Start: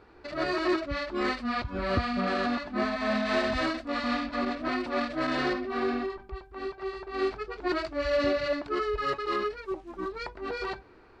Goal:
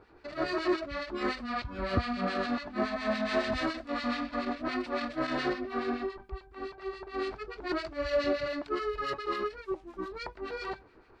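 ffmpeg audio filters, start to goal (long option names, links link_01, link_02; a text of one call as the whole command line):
ffmpeg -i in.wav -filter_complex "[0:a]acrossover=split=1600[link_01][link_02];[link_01]aeval=exprs='val(0)*(1-0.7/2+0.7/2*cos(2*PI*7.1*n/s))':channel_layout=same[link_03];[link_02]aeval=exprs='val(0)*(1-0.7/2-0.7/2*cos(2*PI*7.1*n/s))':channel_layout=same[link_04];[link_03][link_04]amix=inputs=2:normalize=0" out.wav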